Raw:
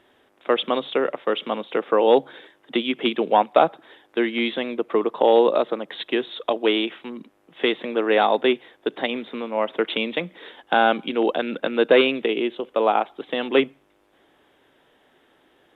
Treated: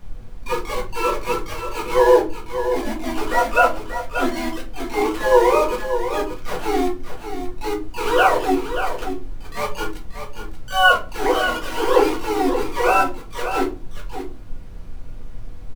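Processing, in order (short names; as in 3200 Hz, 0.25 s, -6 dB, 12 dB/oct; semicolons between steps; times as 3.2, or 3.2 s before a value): sine-wave speech; de-hum 232.9 Hz, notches 5; gate with hold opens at -46 dBFS; low shelf 460 Hz +7 dB; transient shaper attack -11 dB, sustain +1 dB; synth low-pass 1400 Hz, resonance Q 6.1; sample gate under -21 dBFS; harmoniser -5 st -4 dB, +12 st -4 dB; added noise brown -34 dBFS; on a send: echo 0.583 s -9 dB; on the sum: shoebox room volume 140 m³, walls furnished, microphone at 1.8 m; gain -8.5 dB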